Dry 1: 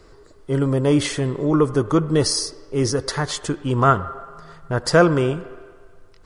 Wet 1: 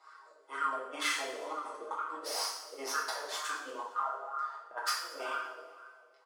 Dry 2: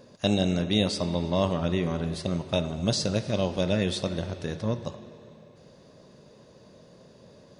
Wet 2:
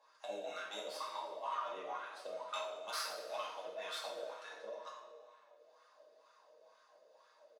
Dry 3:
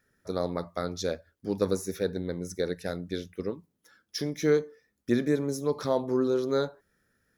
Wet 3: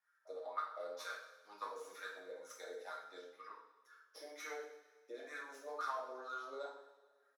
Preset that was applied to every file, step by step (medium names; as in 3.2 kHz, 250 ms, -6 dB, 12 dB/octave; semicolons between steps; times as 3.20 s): tracing distortion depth 0.067 ms; Bessel high-pass 300 Hz, order 8; comb 6.4 ms, depth 42%; wah-wah 2.1 Hz 500–1300 Hz, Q 6.5; compressor with a negative ratio -37 dBFS, ratio -0.5; differentiator; on a send: feedback delay 113 ms, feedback 59%, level -19.5 dB; on the sum: two-slope reverb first 0.6 s, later 1.8 s, from -16 dB, DRR -4.5 dB; trim +12.5 dB